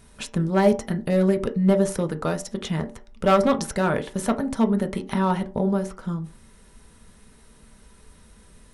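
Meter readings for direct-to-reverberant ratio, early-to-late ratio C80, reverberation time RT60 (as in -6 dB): 5.5 dB, 20.0 dB, 0.45 s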